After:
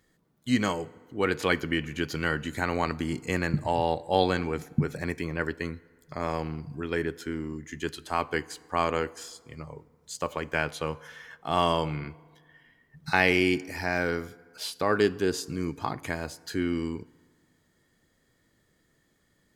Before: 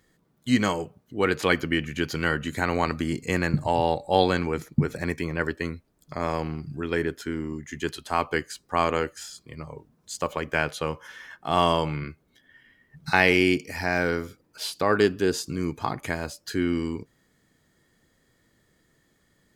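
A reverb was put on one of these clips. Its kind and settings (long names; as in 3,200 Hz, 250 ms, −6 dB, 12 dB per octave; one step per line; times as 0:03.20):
feedback delay network reverb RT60 1.8 s, low-frequency decay 0.9×, high-frequency decay 0.6×, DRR 20 dB
level −3 dB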